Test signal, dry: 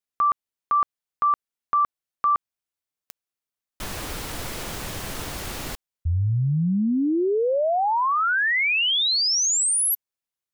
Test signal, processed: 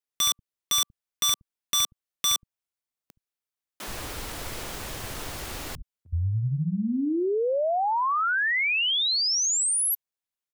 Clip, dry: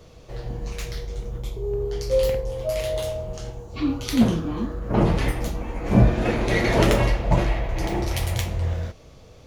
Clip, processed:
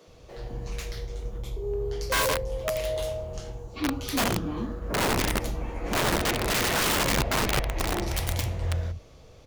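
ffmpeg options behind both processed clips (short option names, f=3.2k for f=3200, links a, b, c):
-filter_complex "[0:a]acrossover=split=180[a][b];[a]adelay=70[c];[c][b]amix=inputs=2:normalize=0,aeval=exprs='(mod(6.68*val(0)+1,2)-1)/6.68':c=same,volume=-3dB"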